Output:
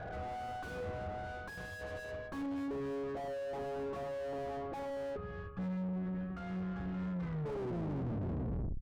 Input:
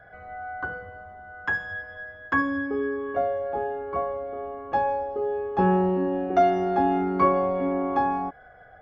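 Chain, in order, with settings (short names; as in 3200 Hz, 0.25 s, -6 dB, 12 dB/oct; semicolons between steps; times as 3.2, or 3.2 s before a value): tape stop at the end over 1.70 s; high shelf 3300 Hz -9.5 dB; early reflections 40 ms -11.5 dB, 56 ms -13.5 dB; reverse; compressor 6:1, threshold -33 dBFS, peak gain reduction 18 dB; reverse; spectral gain 5.16–7.46, 210–1100 Hz -25 dB; tube stage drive 54 dB, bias 0.4; tilt shelf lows +9 dB, about 1200 Hz; gain +10 dB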